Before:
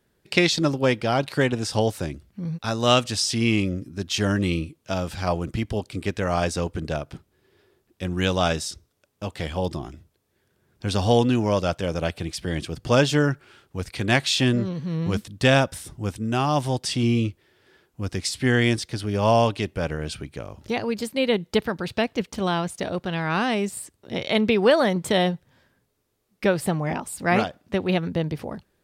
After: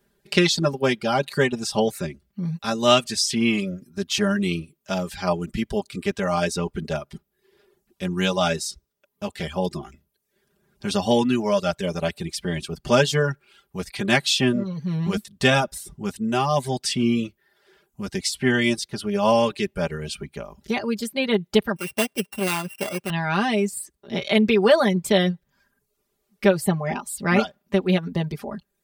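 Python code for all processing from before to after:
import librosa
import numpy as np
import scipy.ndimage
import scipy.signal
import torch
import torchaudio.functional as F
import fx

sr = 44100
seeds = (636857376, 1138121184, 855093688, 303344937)

y = fx.chain(x, sr, fx.sample_sort(block=16),
    fx.highpass(hz=260.0, slope=6), at=(21.76, 23.1))
y = fx.dereverb_blind(y, sr, rt60_s=0.63)
y = fx.high_shelf(y, sr, hz=11000.0, db=4.0)
y = y + 0.9 * np.pad(y, (int(5.0 * sr / 1000.0), 0))[:len(y)]
y = y * 10.0 ** (-1.0 / 20.0)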